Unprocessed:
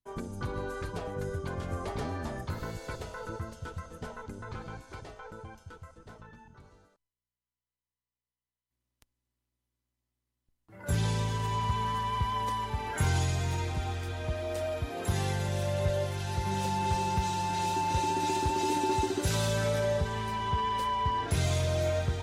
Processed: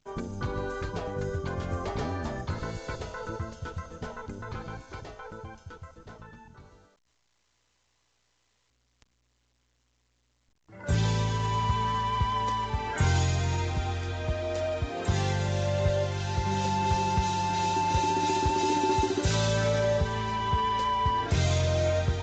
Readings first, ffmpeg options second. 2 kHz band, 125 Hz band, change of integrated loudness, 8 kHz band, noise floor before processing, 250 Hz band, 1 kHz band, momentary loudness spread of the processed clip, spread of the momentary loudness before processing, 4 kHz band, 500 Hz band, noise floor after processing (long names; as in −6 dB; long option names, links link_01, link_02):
+3.0 dB, +3.0 dB, +3.0 dB, +1.0 dB, below −85 dBFS, +3.0 dB, +3.0 dB, 14 LU, 14 LU, +3.0 dB, +3.0 dB, −72 dBFS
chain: -af "volume=3dB" -ar 16000 -c:a pcm_alaw